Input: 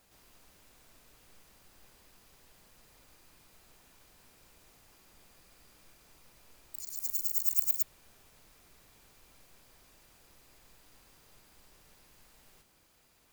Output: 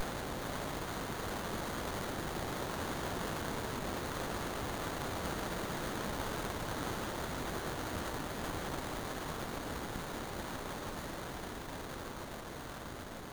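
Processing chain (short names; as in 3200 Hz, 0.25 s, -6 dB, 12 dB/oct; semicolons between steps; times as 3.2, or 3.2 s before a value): Paulstretch 21×, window 1.00 s, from 7.35; running maximum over 17 samples; gain -3.5 dB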